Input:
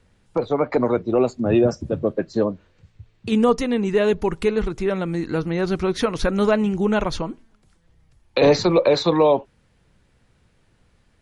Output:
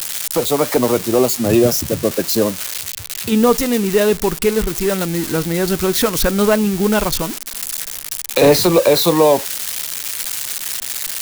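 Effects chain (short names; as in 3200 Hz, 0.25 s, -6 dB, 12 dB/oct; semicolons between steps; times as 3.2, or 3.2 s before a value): switching spikes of -14.5 dBFS; gain +4 dB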